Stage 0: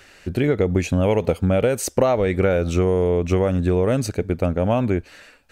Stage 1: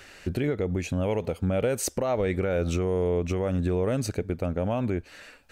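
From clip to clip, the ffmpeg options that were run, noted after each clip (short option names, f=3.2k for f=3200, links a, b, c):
-af "alimiter=limit=-16.5dB:level=0:latency=1:release=399"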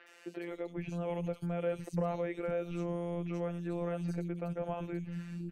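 -filter_complex "[0:a]afftfilt=real='hypot(re,im)*cos(PI*b)':imag='0':win_size=1024:overlap=0.75,acrossover=split=270|3200[a][b][c];[c]adelay=70[d];[a]adelay=510[e];[e][b][d]amix=inputs=3:normalize=0,acrossover=split=2600[f][g];[g]acompressor=threshold=-52dB:ratio=4:attack=1:release=60[h];[f][h]amix=inputs=2:normalize=0,volume=-4dB"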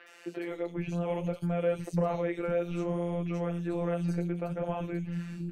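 -af "flanger=delay=9.8:depth=8.4:regen=-53:speed=0.61:shape=sinusoidal,volume=8.5dB"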